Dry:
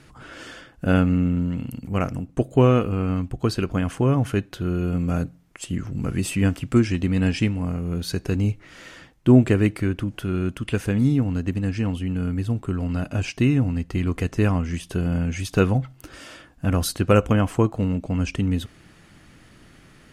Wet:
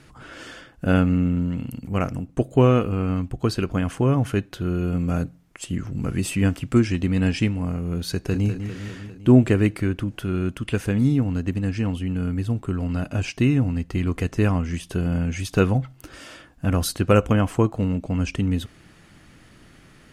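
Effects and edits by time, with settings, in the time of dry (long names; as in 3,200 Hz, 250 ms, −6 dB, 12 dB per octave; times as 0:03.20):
0:08.11–0:08.51: delay throw 200 ms, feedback 65%, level −8.5 dB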